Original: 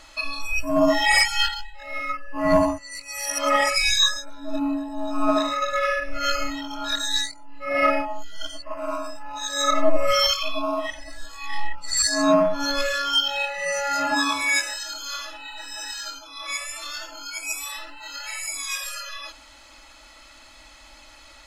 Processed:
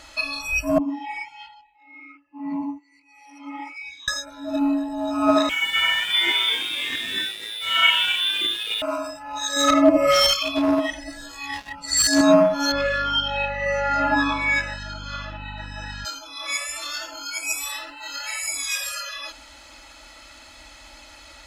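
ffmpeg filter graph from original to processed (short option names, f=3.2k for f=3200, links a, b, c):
-filter_complex "[0:a]asettb=1/sr,asplit=3[a][b][c];[a]atrim=end=0.784[d];[b]atrim=start=0.78:end=4.08,asetpts=PTS-STARTPTS,afade=t=in:d=0.004:c=qsin,afade=t=out:st=3.296:d=0.004:c=qsin,flanger=delay=1.1:depth=9.1:regen=-71:speed=1.3:shape=sinusoidal,asplit=3[e][f][g];[e]bandpass=f=300:t=q:w=8,volume=0dB[h];[f]bandpass=f=870:t=q:w=8,volume=-6dB[i];[g]bandpass=f=2.24k:t=q:w=8,volume=-9dB[j];[h][i][j]amix=inputs=3:normalize=0[k];[c]atrim=start=4.076[l];[d][k]acrossfade=d=0.004:c1=hsin:c2=qsin[m];[m][l]acrossfade=d=0.004:c1=qsin:c2=hsin,asettb=1/sr,asplit=3[n][o][p];[n]atrim=end=5.494[q];[o]atrim=start=5.49:end=8.82,asetpts=PTS-STARTPTS,afade=t=in:d=0.004:c=qsin,afade=t=out:st=3.326:d=0.004:c=qsin,lowpass=f=3k:t=q:w=0.5098,lowpass=f=3k:t=q:w=0.6013,lowpass=f=3k:t=q:w=0.9,lowpass=f=3k:t=q:w=2.563,afreqshift=-3500,asplit=8[r][s][t][u][v][w][x][y];[s]adelay=255,afreqshift=110,volume=-8dB[z];[t]adelay=510,afreqshift=220,volume=-12.9dB[aa];[u]adelay=765,afreqshift=330,volume=-17.8dB[ab];[v]adelay=1020,afreqshift=440,volume=-22.6dB[ac];[w]adelay=1275,afreqshift=550,volume=-27.5dB[ad];[x]adelay=1530,afreqshift=660,volume=-32.4dB[ae];[y]adelay=1785,afreqshift=770,volume=-37.3dB[af];[r][z][aa][ab][ac][ad][ae][af]amix=inputs=8:normalize=0,atrim=end_sample=146853,aeval=exprs='sgn(val(0))*max(abs(val(0))-0.0119,0)':c=same[ag];[p]atrim=start=8.816[ah];[q][ag]acrossfade=d=0.004:c1=hsin:c2=qsin[ai];[ai][ah]acrossfade=d=0.004:c1=qsin:c2=hsin,asettb=1/sr,asplit=3[aj][ak][al];[aj]atrim=end=9.564[am];[ak]atrim=start=9.56:end=12.21,asetpts=PTS-STARTPTS,afade=t=in:d=0.004:c=qsin,afade=t=out:st=2.646:d=0.004:c=qsin,equalizer=f=280:w=1.6:g=9,aeval=exprs='clip(val(0),-1,0.126)':c=same[an];[al]atrim=start=12.206[ao];[am][an]acrossfade=d=0.004:c1=hsin:c2=qsin[ap];[ap][ao]acrossfade=d=0.004:c1=qsin:c2=hsin,asettb=1/sr,asplit=3[aq][ar][as];[aq]atrim=end=12.724[at];[ar]atrim=start=12.72:end=16.05,asetpts=PTS-STARTPTS,afade=t=in:d=0.004:c=qsin,afade=t=out:st=3.326:d=0.004:c=qsin,lowpass=2.5k,aeval=exprs='val(0)+0.01*(sin(2*PI*50*n/s)+sin(2*PI*2*50*n/s)/2+sin(2*PI*3*50*n/s)/3+sin(2*PI*4*50*n/s)/4+sin(2*PI*5*50*n/s)/5)':c=same[au];[as]atrim=start=16.046[av];[at][au]acrossfade=d=0.004:c1=hsin:c2=qsin[aw];[aw][av]acrossfade=d=0.004:c1=qsin:c2=hsin,highpass=43,lowshelf=f=160:g=3.5,bandreject=f=1.1k:w=16,volume=3dB"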